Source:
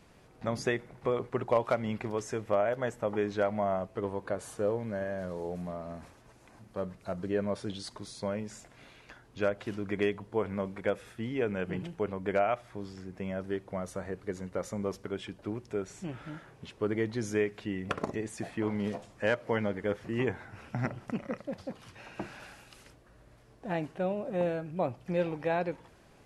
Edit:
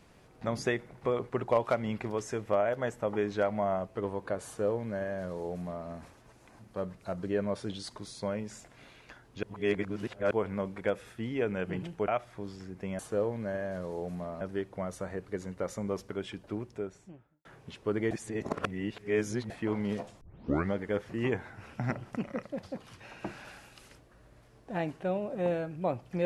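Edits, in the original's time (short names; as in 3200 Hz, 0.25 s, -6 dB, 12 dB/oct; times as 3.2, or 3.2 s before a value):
4.46–5.88 copy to 13.36
9.43–10.31 reverse
12.08–12.45 cut
15.43–16.4 studio fade out
17.06–18.45 reverse
19.16 tape start 0.52 s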